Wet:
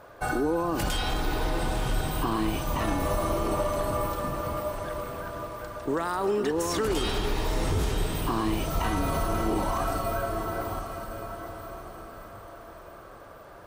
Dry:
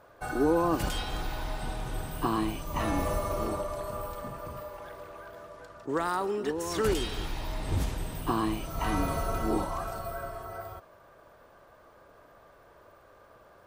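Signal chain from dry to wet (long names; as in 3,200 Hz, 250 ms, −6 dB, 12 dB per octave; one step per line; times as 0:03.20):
brickwall limiter −26 dBFS, peak gain reduction 10.5 dB
on a send: feedback delay with all-pass diffusion 963 ms, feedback 42%, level −8 dB
on the sum: level +7 dB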